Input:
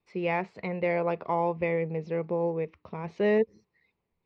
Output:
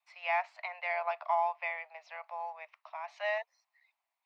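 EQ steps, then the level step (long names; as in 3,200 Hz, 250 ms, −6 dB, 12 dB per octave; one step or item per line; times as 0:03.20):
Butterworth high-pass 630 Hz 96 dB per octave
0.0 dB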